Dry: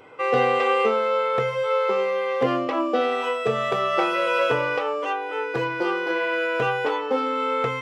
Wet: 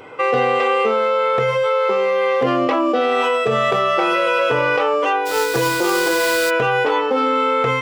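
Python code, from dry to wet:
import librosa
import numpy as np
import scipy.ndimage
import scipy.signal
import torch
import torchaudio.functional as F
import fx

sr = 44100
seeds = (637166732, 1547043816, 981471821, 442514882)

p1 = fx.over_compress(x, sr, threshold_db=-26.0, ratio=-1.0)
p2 = x + (p1 * 10.0 ** (2.5 / 20.0))
y = fx.sample_hold(p2, sr, seeds[0], rate_hz=6200.0, jitter_pct=20, at=(5.25, 6.49), fade=0.02)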